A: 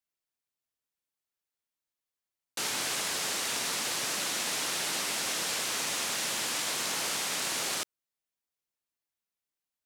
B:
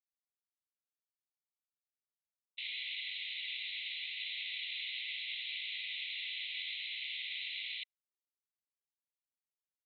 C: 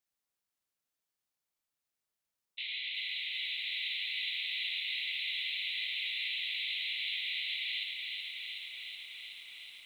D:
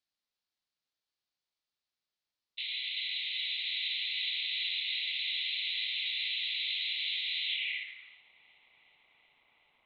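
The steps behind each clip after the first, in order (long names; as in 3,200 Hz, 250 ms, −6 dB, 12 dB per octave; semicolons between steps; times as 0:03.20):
noise gate with hold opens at −23 dBFS; Chebyshev band-pass filter 2,000–4,000 Hz, order 5; level −2.5 dB
brickwall limiter −37 dBFS, peak gain reduction 8 dB; feedback echo at a low word length 373 ms, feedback 80%, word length 12 bits, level −5 dB; level +7 dB
low-pass filter sweep 4,400 Hz → 900 Hz, 0:07.39–0:08.24; level −3 dB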